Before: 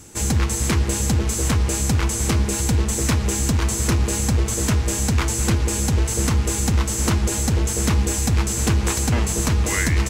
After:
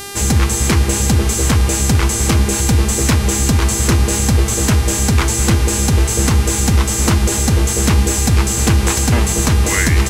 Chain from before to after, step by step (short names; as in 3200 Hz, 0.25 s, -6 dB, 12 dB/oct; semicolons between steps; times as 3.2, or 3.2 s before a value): buzz 400 Hz, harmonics 32, -36 dBFS -2 dB/oct; gain +6 dB